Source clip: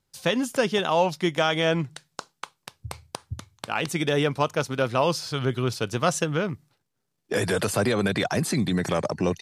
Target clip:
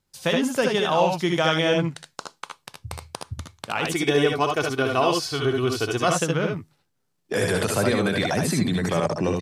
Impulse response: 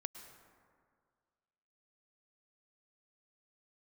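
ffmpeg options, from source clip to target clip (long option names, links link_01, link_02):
-filter_complex "[0:a]asettb=1/sr,asplit=3[link_01][link_02][link_03];[link_01]atrim=end=3.854[link_04];[link_02]atrim=start=3.85:end=6.08,asetpts=PTS-STARTPTS,afade=type=in:duration=0.004:curve=qsin,afade=type=out:start_time=2.226:duration=0.004:curve=qsin,aecho=1:1:2.7:0.63,atrim=end_sample=98343[link_05];[link_03]atrim=start=6.076[link_06];[link_04][link_05]acrossfade=duration=0.004:curve1=hsin:curve2=qsin[link_07];[link_07][link_06]acrossfade=duration=0.004:curve1=qsin:curve2=hsin,aecho=1:1:64|76:0.473|0.596"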